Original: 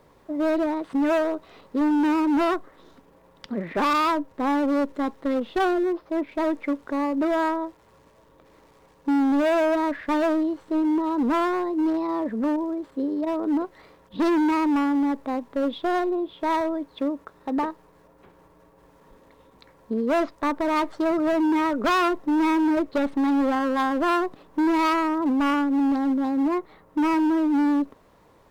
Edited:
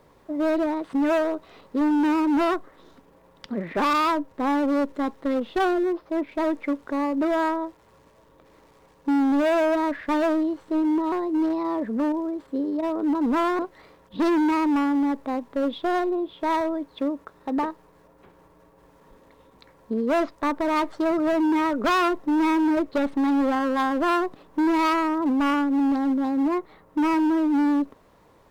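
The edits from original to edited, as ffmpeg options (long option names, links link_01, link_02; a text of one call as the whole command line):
ffmpeg -i in.wav -filter_complex "[0:a]asplit=4[link_01][link_02][link_03][link_04];[link_01]atrim=end=11.122[link_05];[link_02]atrim=start=11.558:end=13.592[link_06];[link_03]atrim=start=11.118:end=11.562[link_07];[link_04]atrim=start=13.588[link_08];[link_05][link_06]acrossfade=duration=0.004:curve1=hsin:curve2=hsin[link_09];[link_09][link_07]acrossfade=duration=0.004:curve1=hsin:curve2=hsin[link_10];[link_10][link_08]acrossfade=duration=0.004:curve1=hsin:curve2=hsin" out.wav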